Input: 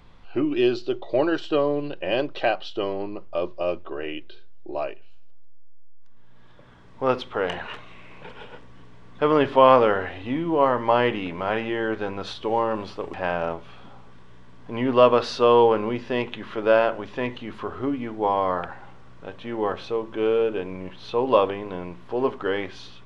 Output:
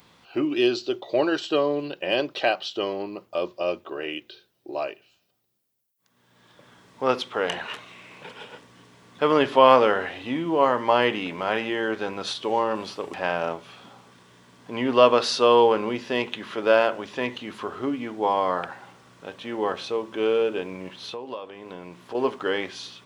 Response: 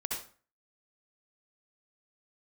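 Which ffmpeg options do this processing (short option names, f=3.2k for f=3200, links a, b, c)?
-filter_complex "[0:a]highpass=150,aemphasis=mode=production:type=75fm,asettb=1/sr,asplit=3[a][b][c];[a]atrim=end=20.984[d];[b]atrim=start=20.98:end=22.15,asetpts=PTS-STARTPTS,afade=t=in:d=0.004:c=qsin,afade=t=out:st=1.166:d=0.004:c=qsin,acompressor=threshold=-34dB:ratio=5[e];[c]atrim=start=22.146[f];[d][e]acrossfade=d=0.004:c1=hsin:c2=qsin[g];[g][f]acrossfade=d=0.004:c1=qsin:c2=hsin"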